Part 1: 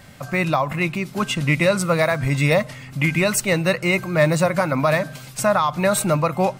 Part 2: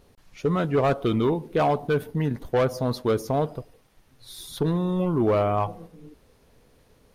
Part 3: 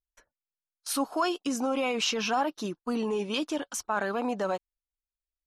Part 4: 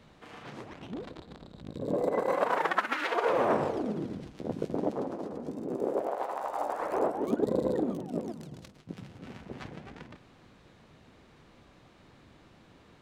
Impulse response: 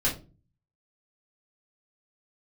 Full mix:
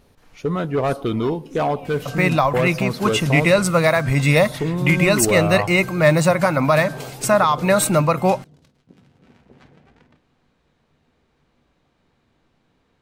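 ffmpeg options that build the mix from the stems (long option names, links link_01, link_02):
-filter_complex "[0:a]adelay=1850,volume=2.5dB[link_01];[1:a]volume=1dB,asplit=2[link_02][link_03];[2:a]volume=-18dB,asplit=2[link_04][link_05];[link_05]volume=-10dB[link_06];[3:a]volume=-9dB,asplit=2[link_07][link_08];[link_08]volume=-18dB[link_09];[link_03]apad=whole_len=574181[link_10];[link_07][link_10]sidechaincompress=threshold=-50dB:ratio=8:attack=16:release=390[link_11];[4:a]atrim=start_sample=2205[link_12];[link_06][link_09]amix=inputs=2:normalize=0[link_13];[link_13][link_12]afir=irnorm=-1:irlink=0[link_14];[link_01][link_02][link_04][link_11][link_14]amix=inputs=5:normalize=0"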